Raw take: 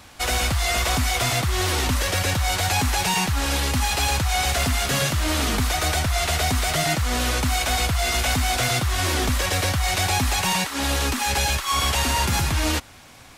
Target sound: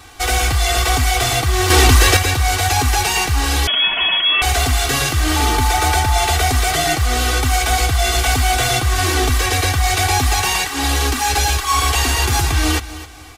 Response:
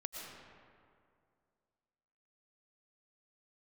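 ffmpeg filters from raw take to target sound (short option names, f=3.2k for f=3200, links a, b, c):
-filter_complex "[0:a]asettb=1/sr,asplit=3[a][b][c];[a]atrim=end=5.364[d];[b]atrim=start=5.36:end=6.33,asetpts=PTS-STARTPTS,afade=t=in:d=0.004:c=qsin,afade=t=out:st=0.966:d=0.004:c=qsin,aeval=exprs='val(0)+0.0562*sin(2*PI*870*n/s)':c=same[e];[c]atrim=start=6.326[f];[d][e]acrossfade=d=0.004:c1=hsin:c2=qsin[g];[g][f]acrossfade=d=0.004:c1=qsin:c2=hsin,aecho=1:1:2.6:0.92,aecho=1:1:263|526|789:0.168|0.0487|0.0141,asettb=1/sr,asplit=3[h][i][j];[h]atrim=end=1.704[k];[i]atrim=start=1.7:end=2.17,asetpts=PTS-STARTPTS,afade=t=in:d=0.004:c=qsin,afade=t=out:st=0.466:d=0.004:c=qsin,acontrast=81[l];[j]atrim=start=2.166[m];[k][l]acrossfade=d=0.004:c1=hsin:c2=qsin[n];[n][m]acrossfade=d=0.004:c1=qsin:c2=hsin,asettb=1/sr,asplit=3[o][p][q];[o]atrim=end=3.674[r];[p]atrim=start=3.67:end=4.42,asetpts=PTS-STARTPTS,afade=t=in:d=0.004:c=qsin,afade=t=out:st=0.746:d=0.004:c=qsin,lowpass=f=2.9k:t=q:w=0.5098,lowpass=f=2.9k:t=q:w=0.6013,lowpass=f=2.9k:t=q:w=0.9,lowpass=f=2.9k:t=q:w=2.563,afreqshift=-3400[s];[q]atrim=start=4.416[t];[r][s]acrossfade=d=0.004:c1=hsin:c2=qsin[u];[u][t]acrossfade=d=0.004:c1=qsin:c2=hsin,volume=2.5dB"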